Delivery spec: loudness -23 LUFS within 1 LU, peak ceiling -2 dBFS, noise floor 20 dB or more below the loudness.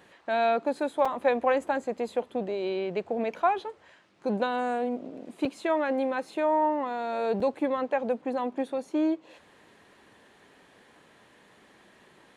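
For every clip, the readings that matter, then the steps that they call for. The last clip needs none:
dropouts 3; longest dropout 4.6 ms; loudness -28.5 LUFS; peak -13.0 dBFS; loudness target -23.0 LUFS
-> interpolate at 1.05/5.45/7.4, 4.6 ms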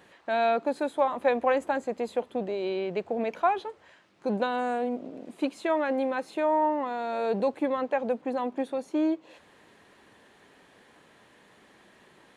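dropouts 0; loudness -28.5 LUFS; peak -13.0 dBFS; loudness target -23.0 LUFS
-> gain +5.5 dB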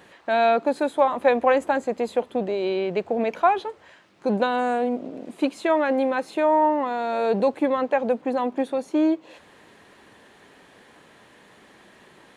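loudness -23.0 LUFS; peak -7.5 dBFS; noise floor -53 dBFS

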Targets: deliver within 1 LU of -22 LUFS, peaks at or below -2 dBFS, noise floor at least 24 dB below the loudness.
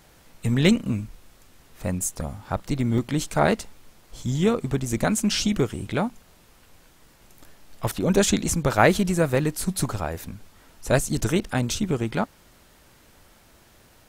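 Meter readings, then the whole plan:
dropouts 1; longest dropout 3.6 ms; loudness -24.5 LUFS; peak -2.5 dBFS; loudness target -22.0 LUFS
-> interpolate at 2.98, 3.6 ms; gain +2.5 dB; limiter -2 dBFS

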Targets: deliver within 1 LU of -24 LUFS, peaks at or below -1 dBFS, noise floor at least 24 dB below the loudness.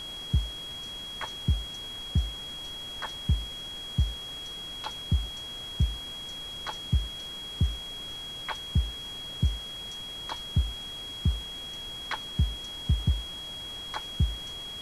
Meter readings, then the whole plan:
steady tone 3300 Hz; tone level -37 dBFS; noise floor -39 dBFS; noise floor target -57 dBFS; loudness -32.5 LUFS; peak -15.0 dBFS; loudness target -24.0 LUFS
-> notch 3300 Hz, Q 30; noise print and reduce 18 dB; gain +8.5 dB

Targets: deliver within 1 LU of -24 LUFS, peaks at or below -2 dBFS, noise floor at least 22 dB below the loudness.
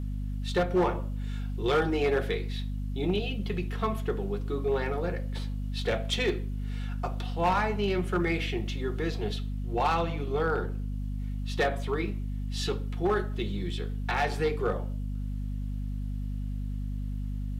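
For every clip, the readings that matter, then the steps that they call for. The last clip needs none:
clipped 0.8%; flat tops at -19.5 dBFS; hum 50 Hz; harmonics up to 250 Hz; hum level -30 dBFS; loudness -31.0 LUFS; peak -19.5 dBFS; loudness target -24.0 LUFS
-> clip repair -19.5 dBFS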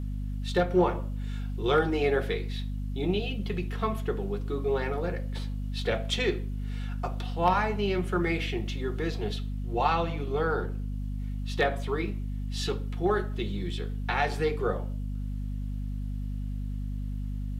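clipped 0.0%; hum 50 Hz; harmonics up to 250 Hz; hum level -30 dBFS
-> notches 50/100/150/200/250 Hz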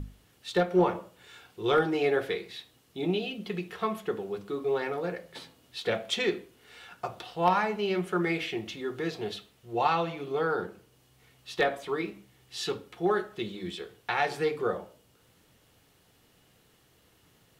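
hum none; loudness -30.5 LUFS; peak -9.5 dBFS; loudness target -24.0 LUFS
-> gain +6.5 dB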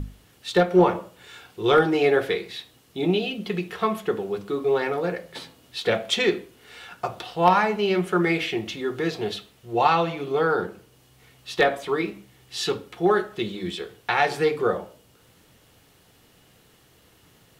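loudness -24.0 LUFS; peak -3.5 dBFS; noise floor -58 dBFS

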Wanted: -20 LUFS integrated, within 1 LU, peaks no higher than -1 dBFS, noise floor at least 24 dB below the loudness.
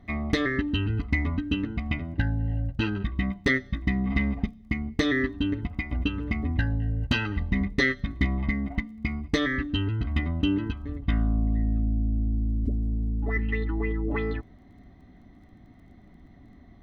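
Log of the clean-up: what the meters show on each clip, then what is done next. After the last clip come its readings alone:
ticks 14/s; loudness -28.0 LUFS; peak -11.5 dBFS; loudness target -20.0 LUFS
-> de-click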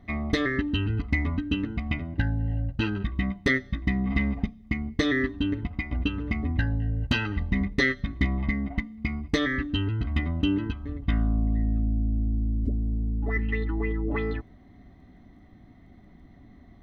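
ticks 0/s; loudness -28.0 LUFS; peak -11.5 dBFS; loudness target -20.0 LUFS
-> gain +8 dB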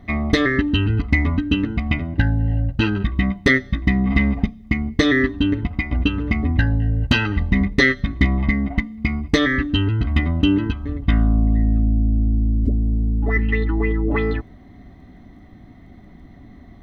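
loudness -20.0 LUFS; peak -3.5 dBFS; noise floor -44 dBFS

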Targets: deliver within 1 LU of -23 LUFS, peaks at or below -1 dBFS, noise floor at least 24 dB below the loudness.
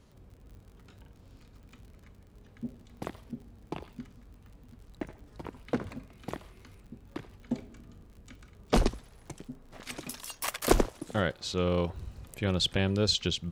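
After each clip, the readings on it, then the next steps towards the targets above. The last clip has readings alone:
ticks 53/s; loudness -32.5 LUFS; peak -7.0 dBFS; loudness target -23.0 LUFS
-> de-click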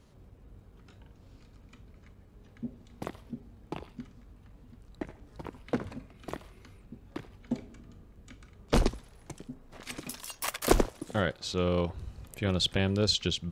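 ticks 0.22/s; loudness -32.5 LUFS; peak -7.0 dBFS; loudness target -23.0 LUFS
-> gain +9.5 dB; limiter -1 dBFS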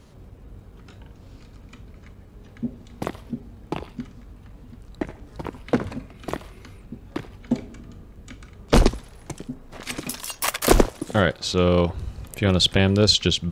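loudness -23.0 LUFS; peak -1.0 dBFS; noise floor -47 dBFS

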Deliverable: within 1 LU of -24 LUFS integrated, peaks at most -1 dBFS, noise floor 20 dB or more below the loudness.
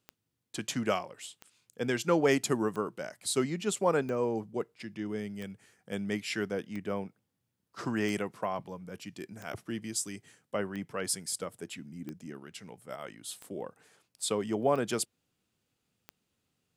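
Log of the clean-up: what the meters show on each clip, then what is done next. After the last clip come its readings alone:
clicks 13; loudness -33.5 LUFS; peak -13.0 dBFS; loudness target -24.0 LUFS
-> de-click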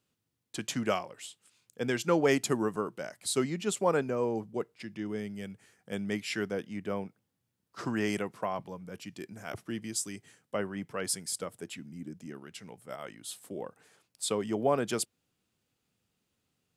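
clicks 0; loudness -33.5 LUFS; peak -13.0 dBFS; loudness target -24.0 LUFS
-> gain +9.5 dB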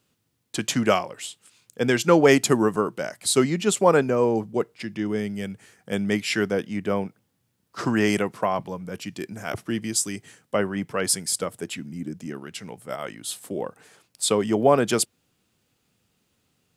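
loudness -24.0 LUFS; peak -3.5 dBFS; noise floor -72 dBFS

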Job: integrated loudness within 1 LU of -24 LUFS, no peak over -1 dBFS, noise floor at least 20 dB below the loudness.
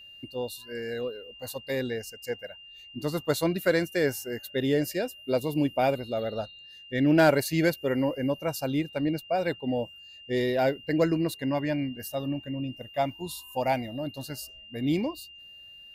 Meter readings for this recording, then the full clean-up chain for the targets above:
steady tone 2800 Hz; tone level -46 dBFS; loudness -29.0 LUFS; peak -12.0 dBFS; loudness target -24.0 LUFS
-> notch 2800 Hz, Q 30; gain +5 dB

